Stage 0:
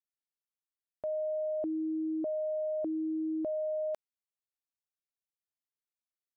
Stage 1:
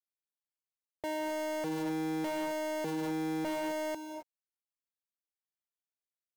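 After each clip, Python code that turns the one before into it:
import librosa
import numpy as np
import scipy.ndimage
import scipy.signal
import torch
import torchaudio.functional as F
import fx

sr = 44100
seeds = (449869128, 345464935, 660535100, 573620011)

y = fx.cycle_switch(x, sr, every=2, mode='muted')
y = fx.rev_gated(y, sr, seeds[0], gate_ms=290, shape='rising', drr_db=9.0)
y = fx.leveller(y, sr, passes=2)
y = F.gain(torch.from_numpy(y), -2.0).numpy()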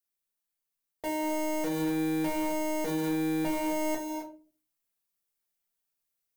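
y = fx.high_shelf(x, sr, hz=8200.0, db=10.5)
y = fx.rider(y, sr, range_db=10, speed_s=0.5)
y = fx.room_shoebox(y, sr, seeds[1], volume_m3=200.0, walls='furnished', distance_m=1.7)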